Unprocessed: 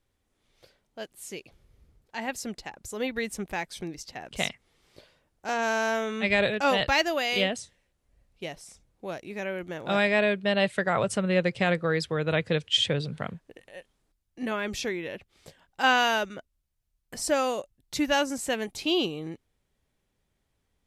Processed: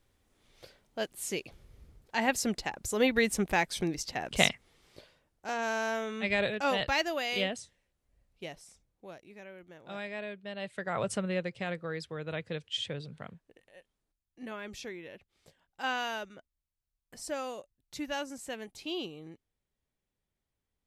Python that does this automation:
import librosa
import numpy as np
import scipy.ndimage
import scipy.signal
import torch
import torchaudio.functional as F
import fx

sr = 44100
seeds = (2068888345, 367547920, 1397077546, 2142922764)

y = fx.gain(x, sr, db=fx.line((4.46, 4.5), (5.53, -5.5), (8.53, -5.5), (9.49, -16.0), (10.57, -16.0), (11.11, -4.0), (11.51, -11.0)))